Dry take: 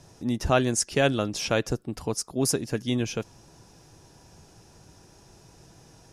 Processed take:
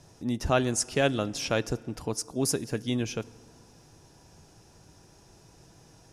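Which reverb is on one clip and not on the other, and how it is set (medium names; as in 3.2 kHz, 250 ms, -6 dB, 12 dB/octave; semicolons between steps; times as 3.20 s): FDN reverb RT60 2.1 s, low-frequency decay 1.05×, high-frequency decay 0.65×, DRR 20 dB; trim -2.5 dB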